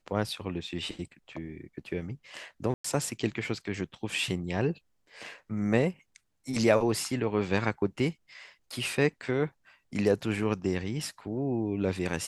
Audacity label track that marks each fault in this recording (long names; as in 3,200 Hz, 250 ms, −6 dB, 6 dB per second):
2.740000	2.840000	drop-out 104 ms